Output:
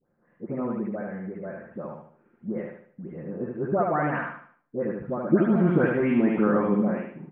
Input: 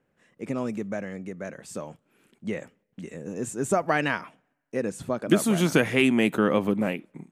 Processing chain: delay that grows with frequency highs late, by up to 269 ms; low-pass 1.6 kHz 24 dB/octave; feedback delay 75 ms, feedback 38%, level -3.5 dB

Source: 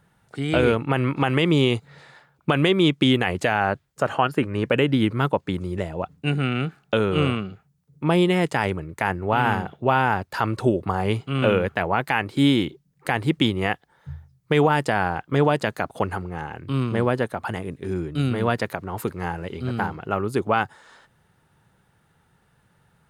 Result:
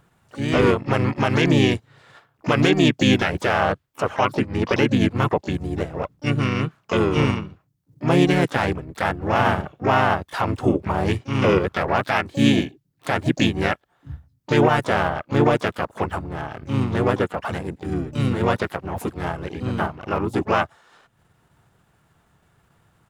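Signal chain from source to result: transient shaper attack -3 dB, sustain -7 dB; harmony voices -4 st -1 dB, +4 st -16 dB, +12 st -13 dB

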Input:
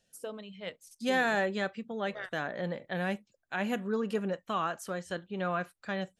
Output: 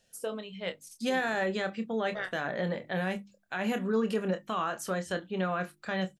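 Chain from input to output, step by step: hum notches 50/100/150/200/250/300/350 Hz; peak limiter -26 dBFS, peak gain reduction 9.5 dB; doubling 27 ms -9 dB; trim +4.5 dB

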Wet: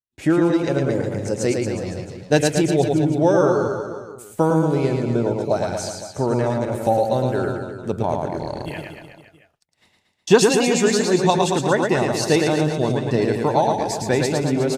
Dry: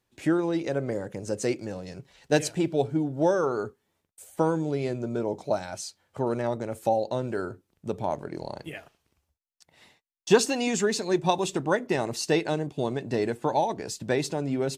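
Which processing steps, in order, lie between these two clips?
expander -48 dBFS; bass shelf 120 Hz +7.5 dB; reverse bouncing-ball echo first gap 110 ms, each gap 1.1×, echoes 5; trim +5 dB

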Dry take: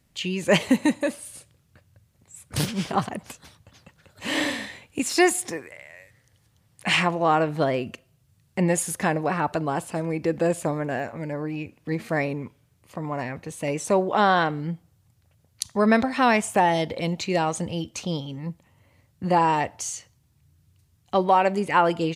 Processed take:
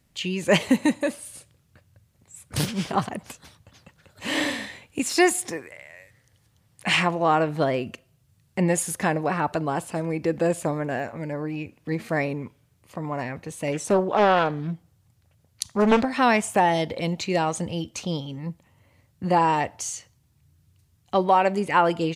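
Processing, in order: 13.72–16.05 s: loudspeaker Doppler distortion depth 0.67 ms

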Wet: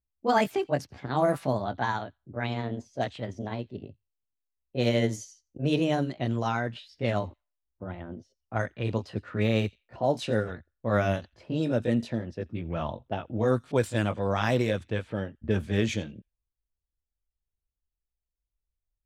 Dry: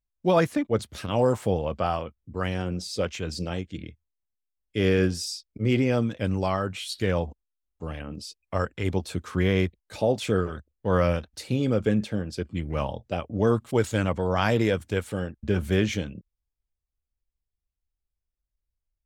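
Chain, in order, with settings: pitch bend over the whole clip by +5 st ending unshifted; feedback echo behind a high-pass 86 ms, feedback 31%, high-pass 3.5 kHz, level -18.5 dB; level-controlled noise filter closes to 760 Hz, open at -20 dBFS; trim -1.5 dB

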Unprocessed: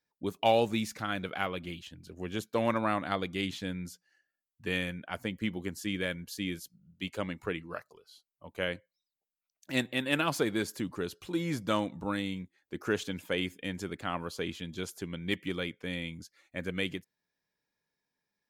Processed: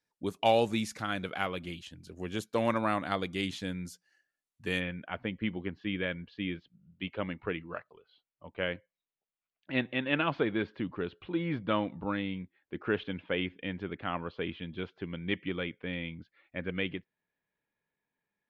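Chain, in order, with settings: steep low-pass 12 kHz 36 dB/octave, from 4.79 s 3.3 kHz

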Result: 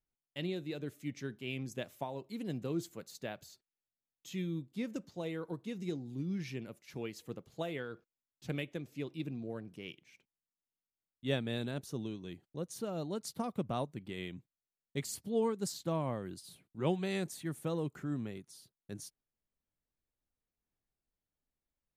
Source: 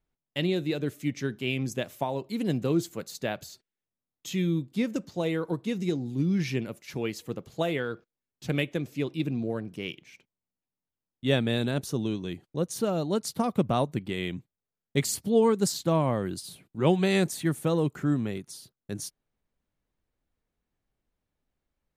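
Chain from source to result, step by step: random flutter of the level, depth 50%; trim -8.5 dB

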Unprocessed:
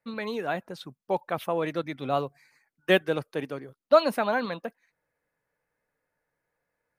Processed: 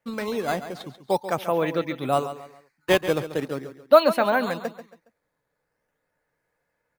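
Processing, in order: 2.19–3.00 s: bass shelf 270 Hz -9 dB; in parallel at -4 dB: decimation with a swept rate 9×, swing 160% 0.42 Hz; on the sum: feedback delay 138 ms, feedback 34%, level -12 dB

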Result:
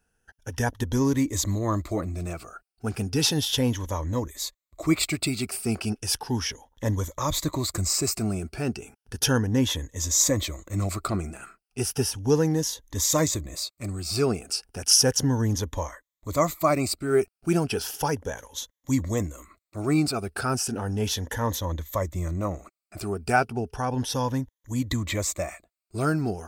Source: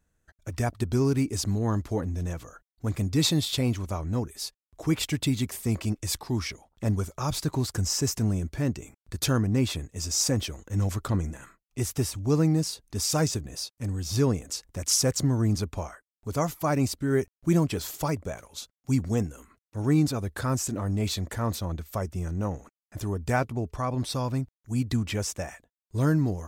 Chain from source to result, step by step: drifting ripple filter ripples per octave 1.1, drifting +0.34 Hz, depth 11 dB; peaking EQ 140 Hz -6.5 dB 1.8 oct; trim +3 dB

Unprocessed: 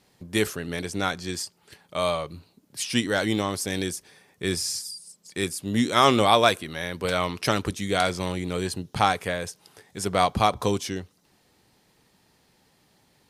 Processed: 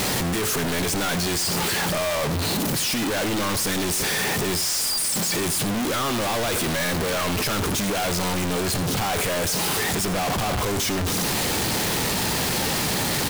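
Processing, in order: one-bit comparator; on a send: delay 86 ms -14 dB; on the sum: trim +3 dB

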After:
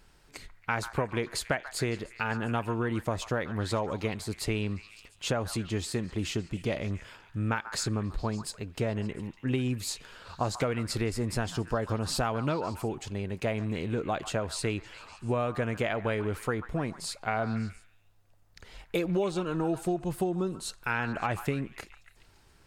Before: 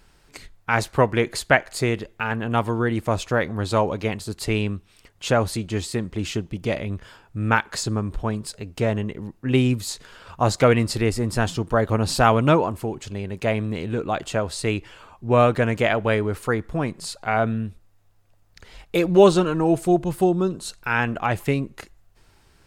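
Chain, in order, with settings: compression 12:1, threshold -21 dBFS, peak gain reduction 13.5 dB; on a send: repeats whose band climbs or falls 140 ms, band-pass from 1.2 kHz, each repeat 0.7 oct, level -9.5 dB; on the sum: trim -4 dB

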